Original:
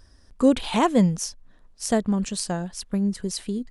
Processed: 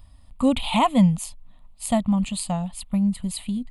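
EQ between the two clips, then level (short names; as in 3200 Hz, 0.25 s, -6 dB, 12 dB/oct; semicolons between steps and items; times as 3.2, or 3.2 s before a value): bell 350 Hz -13.5 dB 0.21 oct; bell 1300 Hz -2.5 dB 1.6 oct; fixed phaser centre 1600 Hz, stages 6; +5.5 dB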